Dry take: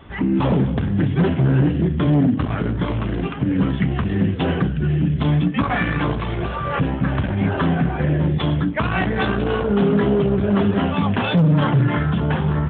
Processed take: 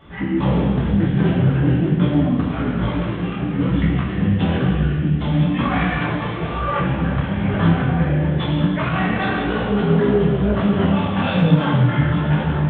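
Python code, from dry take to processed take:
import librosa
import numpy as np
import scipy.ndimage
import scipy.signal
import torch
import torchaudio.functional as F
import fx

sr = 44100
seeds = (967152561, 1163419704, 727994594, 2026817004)

p1 = x + fx.echo_feedback(x, sr, ms=402, feedback_pct=41, wet_db=-18.0, dry=0)
p2 = fx.rev_gated(p1, sr, seeds[0], gate_ms=480, shape='falling', drr_db=-2.5)
y = fx.detune_double(p2, sr, cents=36)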